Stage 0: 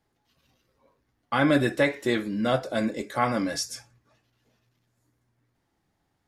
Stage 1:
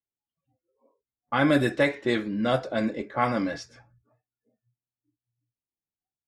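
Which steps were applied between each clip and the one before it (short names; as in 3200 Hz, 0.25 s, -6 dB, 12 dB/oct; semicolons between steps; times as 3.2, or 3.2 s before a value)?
spectral noise reduction 28 dB; low-pass opened by the level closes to 820 Hz, open at -18 dBFS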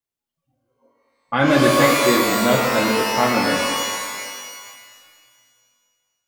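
split-band echo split 540 Hz, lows 0.116 s, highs 0.239 s, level -11 dB; shimmer reverb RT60 1.6 s, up +12 st, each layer -2 dB, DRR 2.5 dB; gain +4 dB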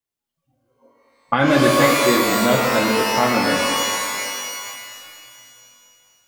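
recorder AGC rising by 6.2 dB/s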